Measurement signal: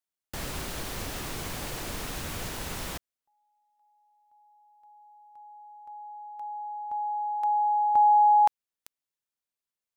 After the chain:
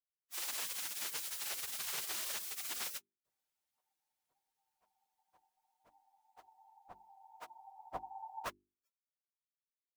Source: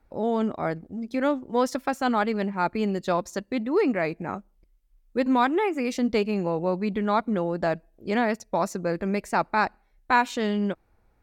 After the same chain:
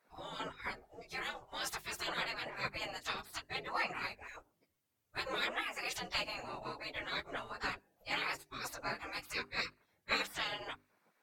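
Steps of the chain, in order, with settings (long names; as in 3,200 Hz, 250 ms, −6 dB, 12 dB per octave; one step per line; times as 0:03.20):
random phases in long frames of 50 ms
gate on every frequency bin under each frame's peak −20 dB weak
mains-hum notches 50/100/150/200/250/300/350/400 Hz
level +1.5 dB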